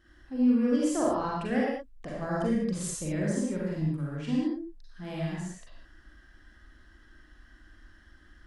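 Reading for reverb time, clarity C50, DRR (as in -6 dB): not exponential, -2.5 dB, -6.0 dB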